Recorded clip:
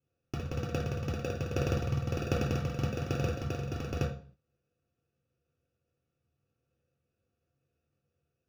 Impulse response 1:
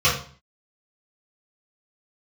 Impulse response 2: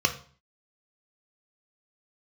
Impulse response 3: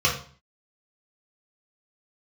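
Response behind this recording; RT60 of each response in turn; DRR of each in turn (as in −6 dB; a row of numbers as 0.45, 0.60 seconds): 3; 0.45, 0.45, 0.45 seconds; −9.5, 5.0, −4.0 decibels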